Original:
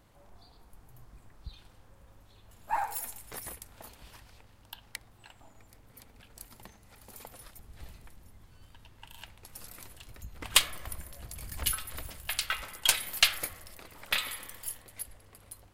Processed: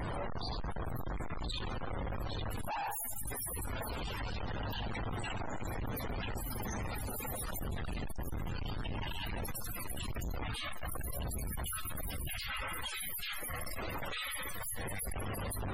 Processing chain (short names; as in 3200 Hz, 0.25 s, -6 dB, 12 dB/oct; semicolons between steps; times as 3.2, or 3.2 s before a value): infinite clipping; loudest bins only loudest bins 64; gain +2 dB